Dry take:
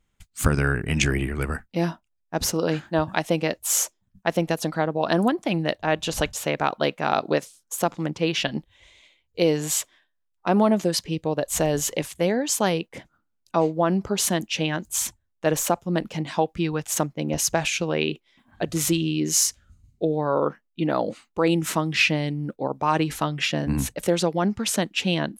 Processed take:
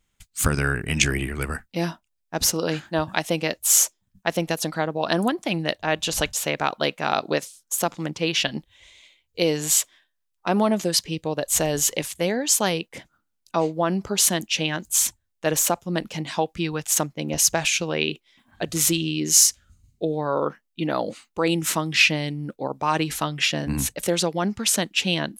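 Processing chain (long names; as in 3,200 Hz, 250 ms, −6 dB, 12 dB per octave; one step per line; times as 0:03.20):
high-shelf EQ 2,100 Hz +8 dB
level −2 dB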